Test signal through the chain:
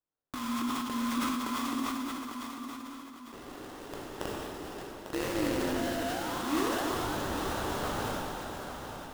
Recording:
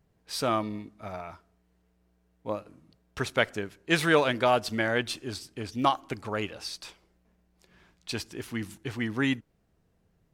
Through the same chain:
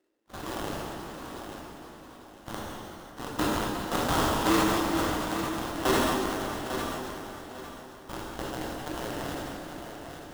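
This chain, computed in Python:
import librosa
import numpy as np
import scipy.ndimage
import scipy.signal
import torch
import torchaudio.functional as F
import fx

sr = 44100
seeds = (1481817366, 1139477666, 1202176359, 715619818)

y = fx.rattle_buzz(x, sr, strikes_db=-38.0, level_db=-15.0)
y = fx.low_shelf(y, sr, hz=460.0, db=-5.5)
y = fx.level_steps(y, sr, step_db=12)
y = y * np.sin(2.0 * np.pi * 420.0 * np.arange(len(y)) / sr)
y = fx.highpass_res(y, sr, hz=310.0, q=3.4)
y = fx.wow_flutter(y, sr, seeds[0], rate_hz=2.1, depth_cents=140.0)
y = fx.sample_hold(y, sr, seeds[1], rate_hz=2300.0, jitter_pct=20)
y = fx.echo_feedback(y, sr, ms=848, feedback_pct=29, wet_db=-9.0)
y = fx.rev_plate(y, sr, seeds[2], rt60_s=4.0, hf_ratio=0.85, predelay_ms=0, drr_db=-2.0)
y = fx.sustainer(y, sr, db_per_s=20.0)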